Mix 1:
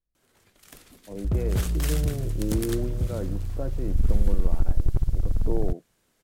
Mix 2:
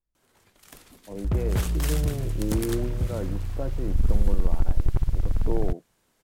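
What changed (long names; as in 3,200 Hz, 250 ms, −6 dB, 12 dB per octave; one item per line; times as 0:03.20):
second sound: add parametric band 2,200 Hz +7.5 dB 1.7 octaves
master: add parametric band 920 Hz +4 dB 0.66 octaves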